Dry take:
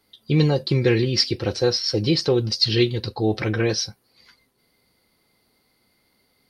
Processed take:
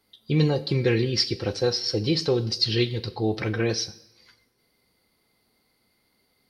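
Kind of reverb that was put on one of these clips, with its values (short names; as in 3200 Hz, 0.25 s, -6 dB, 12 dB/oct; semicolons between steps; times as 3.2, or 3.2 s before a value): two-slope reverb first 0.7 s, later 1.9 s, from -22 dB, DRR 12.5 dB; gain -3.5 dB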